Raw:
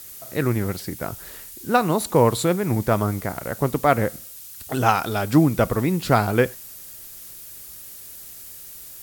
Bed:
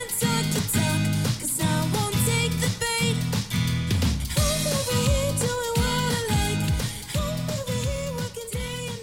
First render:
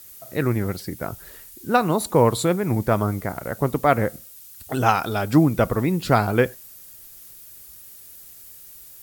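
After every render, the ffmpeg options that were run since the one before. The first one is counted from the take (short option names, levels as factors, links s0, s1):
-af "afftdn=nr=6:nf=-41"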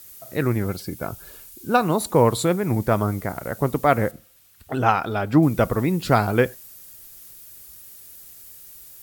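-filter_complex "[0:a]asettb=1/sr,asplit=3[s0][s1][s2];[s0]atrim=end=0.664[s3];[s1]atrim=start=0.66:end=1.82,asetpts=PTS-STARTPTS,afade=t=in:d=0.004:c=qsin,afade=t=out:st=1.156:d=0.004:c=qsin,asuperstop=centerf=1900:order=12:qfactor=7.1[s4];[s2]atrim=start=1.816[s5];[s3][s4]acrossfade=d=0.004:c1=hsin:c2=qsin[s6];[s6][s5]acrossfade=d=0.004:c1=qsin:c2=hsin,asettb=1/sr,asplit=3[s7][s8][s9];[s7]atrim=end=4.114[s10];[s8]atrim=start=4.11:end=5.43,asetpts=PTS-STARTPTS,afade=t=in:d=0.004:c=qsin,afade=t=out:st=1.316:d=0.004:c=qsin,bass=f=250:g=-1,treble=f=4000:g=-12[s11];[s9]atrim=start=5.426[s12];[s10][s11]acrossfade=d=0.004:c1=hsin:c2=qsin[s13];[s13][s12]acrossfade=d=0.004:c1=qsin:c2=hsin"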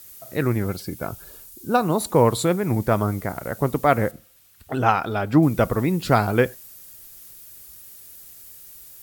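-filter_complex "[0:a]asettb=1/sr,asplit=3[s0][s1][s2];[s0]atrim=end=1.244[s3];[s1]atrim=start=1.24:end=1.96,asetpts=PTS-STARTPTS,afade=t=in:d=0.004:c=qsin,afade=t=out:st=0.716:d=0.004:c=qsin,equalizer=f=2200:w=0.94:g=-5.5[s4];[s2]atrim=start=1.956[s5];[s3][s4]acrossfade=d=0.004:c1=hsin:c2=qsin[s6];[s6][s5]acrossfade=d=0.004:c1=qsin:c2=hsin"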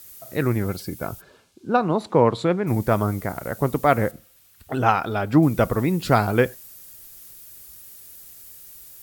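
-filter_complex "[0:a]asplit=3[s0][s1][s2];[s0]afade=t=out:st=1.2:d=0.02[s3];[s1]highpass=120,lowpass=3400,afade=t=in:st=1.2:d=0.02,afade=t=out:st=2.66:d=0.02[s4];[s2]afade=t=in:st=2.66:d=0.02[s5];[s3][s4][s5]amix=inputs=3:normalize=0"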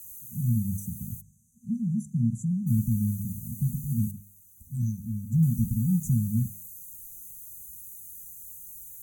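-af "bandreject=f=50.29:t=h:w=4,bandreject=f=100.58:t=h:w=4,bandreject=f=150.87:t=h:w=4,bandreject=f=201.16:t=h:w=4,bandreject=f=251.45:t=h:w=4,bandreject=f=301.74:t=h:w=4,bandreject=f=352.03:t=h:w=4,bandreject=f=402.32:t=h:w=4,bandreject=f=452.61:t=h:w=4,bandreject=f=502.9:t=h:w=4,bandreject=f=553.19:t=h:w=4,bandreject=f=603.48:t=h:w=4,bandreject=f=653.77:t=h:w=4,bandreject=f=704.06:t=h:w=4,bandreject=f=754.35:t=h:w=4,bandreject=f=804.64:t=h:w=4,bandreject=f=854.93:t=h:w=4,bandreject=f=905.22:t=h:w=4,bandreject=f=955.51:t=h:w=4,bandreject=f=1005.8:t=h:w=4,bandreject=f=1056.09:t=h:w=4,bandreject=f=1106.38:t=h:w=4,bandreject=f=1156.67:t=h:w=4,bandreject=f=1206.96:t=h:w=4,bandreject=f=1257.25:t=h:w=4,bandreject=f=1307.54:t=h:w=4,bandreject=f=1357.83:t=h:w=4,bandreject=f=1408.12:t=h:w=4,bandreject=f=1458.41:t=h:w=4,bandreject=f=1508.7:t=h:w=4,bandreject=f=1558.99:t=h:w=4,afftfilt=real='re*(1-between(b*sr/4096,240,5900))':imag='im*(1-between(b*sr/4096,240,5900))':win_size=4096:overlap=0.75"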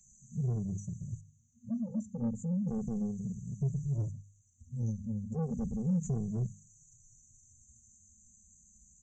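-filter_complex "[0:a]aresample=16000,asoftclip=type=tanh:threshold=0.0531,aresample=44100,asplit=2[s0][s1];[s1]adelay=2.2,afreqshift=-0.34[s2];[s0][s2]amix=inputs=2:normalize=1"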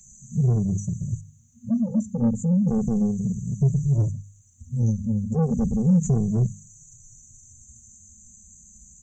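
-af "volume=3.98"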